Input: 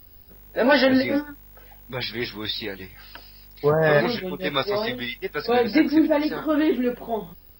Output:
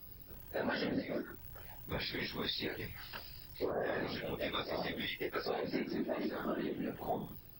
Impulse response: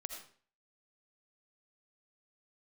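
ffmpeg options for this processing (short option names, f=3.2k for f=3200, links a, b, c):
-af "afftfilt=real='re':imag='-im':win_size=2048:overlap=0.75,acompressor=threshold=-35dB:ratio=8,afftfilt=real='hypot(re,im)*cos(2*PI*random(0))':imag='hypot(re,im)*sin(2*PI*random(1))':win_size=512:overlap=0.75,volume=6.5dB"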